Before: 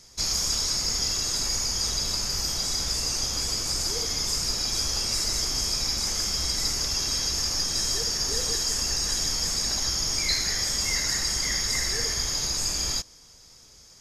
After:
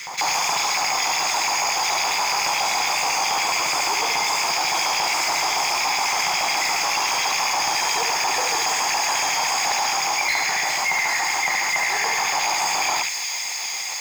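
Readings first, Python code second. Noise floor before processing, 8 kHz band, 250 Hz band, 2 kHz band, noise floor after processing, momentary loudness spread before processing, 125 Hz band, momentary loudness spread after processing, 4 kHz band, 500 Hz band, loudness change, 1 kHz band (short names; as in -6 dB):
-52 dBFS, +2.0 dB, -1.5 dB, +15.0 dB, -28 dBFS, 2 LU, -11.5 dB, 1 LU, +2.0 dB, +8.0 dB, +4.5 dB, +20.5 dB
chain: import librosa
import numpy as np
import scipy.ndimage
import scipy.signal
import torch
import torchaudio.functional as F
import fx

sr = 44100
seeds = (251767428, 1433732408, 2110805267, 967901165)

y = fx.rattle_buzz(x, sr, strikes_db=-38.0, level_db=-28.0)
y = fx.notch(y, sr, hz=5600.0, q=7.4)
y = fx.small_body(y, sr, hz=(320.0, 3500.0), ring_ms=25, db=10)
y = fx.filter_lfo_highpass(y, sr, shape='square', hz=7.1, low_hz=790.0, high_hz=2200.0, q=5.3)
y = fx.high_shelf(y, sr, hz=3600.0, db=-3.0)
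y = fx.quant_float(y, sr, bits=2)
y = fx.graphic_eq_15(y, sr, hz=(160, 1000, 4000, 10000), db=(10, 8, -8, -11))
y = fx.rider(y, sr, range_db=10, speed_s=0.5)
y = y + 10.0 ** (-5.0 / 20.0) * np.pad(y, (int(72 * sr / 1000.0), 0))[:len(y)]
y = 10.0 ** (-21.5 / 20.0) * np.tanh(y / 10.0 ** (-21.5 / 20.0))
y = fx.echo_wet_highpass(y, sr, ms=402, feedback_pct=83, hz=3200.0, wet_db=-10.0)
y = fx.env_flatten(y, sr, amount_pct=50)
y = F.gain(torch.from_numpy(y), 6.0).numpy()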